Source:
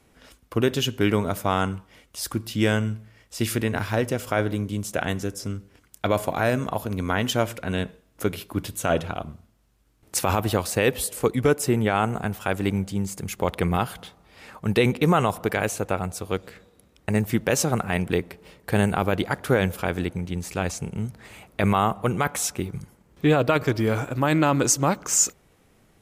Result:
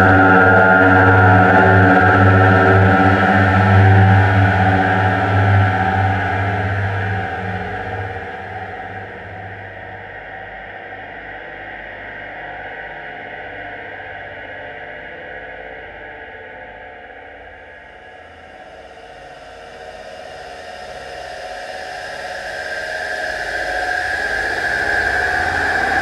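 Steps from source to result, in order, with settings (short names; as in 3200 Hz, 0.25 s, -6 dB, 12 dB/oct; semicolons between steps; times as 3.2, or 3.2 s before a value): expander -51 dBFS; tilt -3.5 dB/oct; in parallel at -6 dB: bit-crush 5-bit; on the sum: chorus voices 6, 0.56 Hz, delay 13 ms, depth 2 ms; double band-pass 1100 Hz, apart 1.1 oct; Paulstretch 45×, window 0.25 s, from 1.68; on a send: swung echo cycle 0.991 s, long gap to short 1.5:1, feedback 49%, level -16 dB; on the sum: spring tank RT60 1.6 s, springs 60 ms, chirp 35 ms, DRR -4 dB; maximiser +32 dB; gain -1 dB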